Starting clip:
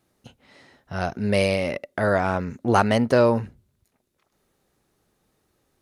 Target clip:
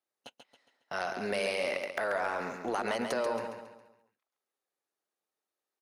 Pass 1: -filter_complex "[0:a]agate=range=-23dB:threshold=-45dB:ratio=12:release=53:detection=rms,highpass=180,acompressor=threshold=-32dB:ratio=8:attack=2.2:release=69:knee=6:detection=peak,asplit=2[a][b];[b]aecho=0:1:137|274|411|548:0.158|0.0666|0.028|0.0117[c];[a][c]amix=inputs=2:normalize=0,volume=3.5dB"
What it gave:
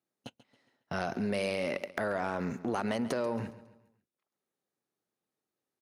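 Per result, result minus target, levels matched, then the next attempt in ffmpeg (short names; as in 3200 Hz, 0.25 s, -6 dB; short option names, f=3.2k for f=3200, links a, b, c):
250 Hz band +6.5 dB; echo-to-direct -9.5 dB
-filter_complex "[0:a]agate=range=-23dB:threshold=-45dB:ratio=12:release=53:detection=rms,highpass=520,acompressor=threshold=-32dB:ratio=8:attack=2.2:release=69:knee=6:detection=peak,asplit=2[a][b];[b]aecho=0:1:137|274|411|548:0.158|0.0666|0.028|0.0117[c];[a][c]amix=inputs=2:normalize=0,volume=3.5dB"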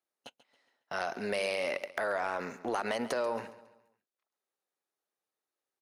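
echo-to-direct -9.5 dB
-filter_complex "[0:a]agate=range=-23dB:threshold=-45dB:ratio=12:release=53:detection=rms,highpass=520,acompressor=threshold=-32dB:ratio=8:attack=2.2:release=69:knee=6:detection=peak,asplit=2[a][b];[b]aecho=0:1:137|274|411|548|685:0.473|0.199|0.0835|0.0351|0.0147[c];[a][c]amix=inputs=2:normalize=0,volume=3.5dB"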